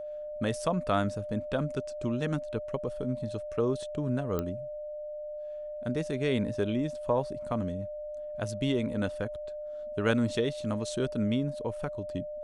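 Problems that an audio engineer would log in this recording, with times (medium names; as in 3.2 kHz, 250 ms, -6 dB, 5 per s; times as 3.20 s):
whine 600 Hz -36 dBFS
4.39 s: pop -18 dBFS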